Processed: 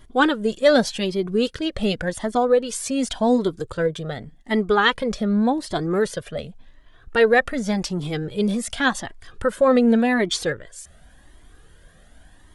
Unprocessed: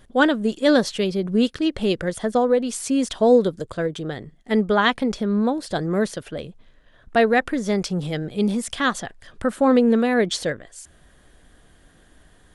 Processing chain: cascading flanger rising 0.88 Hz; gain +5.5 dB

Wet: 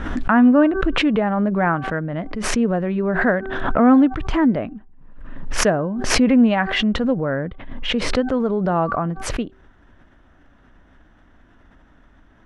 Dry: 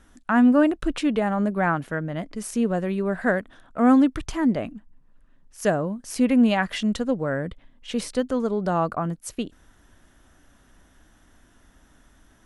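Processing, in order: LPF 2400 Hz 12 dB/oct; de-hum 384 Hz, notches 4; backwards sustainer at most 42 dB/s; gain +3.5 dB

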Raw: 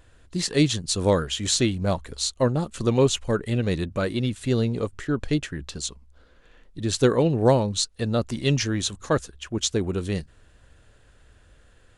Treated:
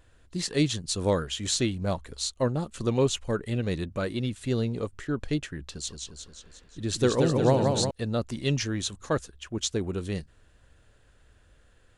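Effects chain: 5.69–7.91 warbling echo 0.178 s, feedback 60%, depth 113 cents, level -4 dB; gain -4.5 dB

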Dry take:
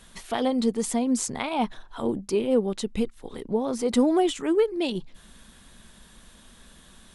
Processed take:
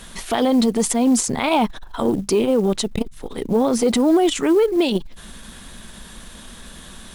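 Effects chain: de-hum 70.83 Hz, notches 2; short-mantissa float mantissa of 4-bit; maximiser +20.5 dB; core saturation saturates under 170 Hz; gain -8 dB

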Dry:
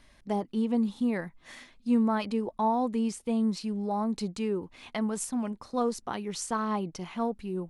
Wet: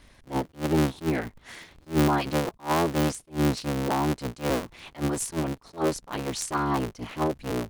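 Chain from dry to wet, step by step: cycle switcher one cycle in 3, inverted; attack slew limiter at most 270 dB/s; gain +4 dB

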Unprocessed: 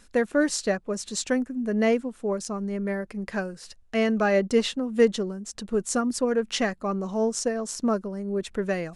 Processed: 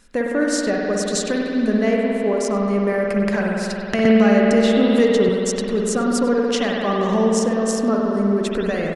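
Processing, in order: recorder AGC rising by 29 dB/s; outdoor echo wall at 17 m, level -19 dB; spring tank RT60 3.1 s, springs 54 ms, chirp 45 ms, DRR -2 dB; 4.05–5.29 three-band squash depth 70%

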